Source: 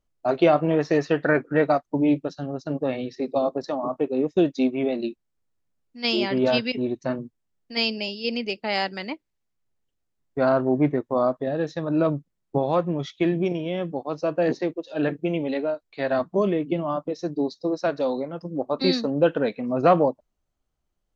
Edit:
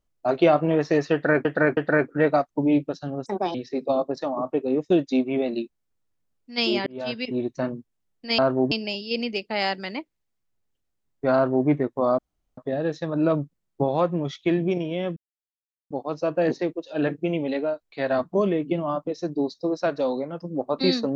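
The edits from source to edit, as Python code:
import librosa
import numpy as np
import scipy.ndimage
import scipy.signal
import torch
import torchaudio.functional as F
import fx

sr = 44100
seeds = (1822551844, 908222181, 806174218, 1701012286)

y = fx.edit(x, sr, fx.repeat(start_s=1.13, length_s=0.32, count=3),
    fx.speed_span(start_s=2.62, length_s=0.39, speed=1.37),
    fx.fade_in_span(start_s=6.33, length_s=0.54),
    fx.duplicate(start_s=10.48, length_s=0.33, to_s=7.85),
    fx.insert_room_tone(at_s=11.32, length_s=0.39),
    fx.insert_silence(at_s=13.91, length_s=0.74), tone=tone)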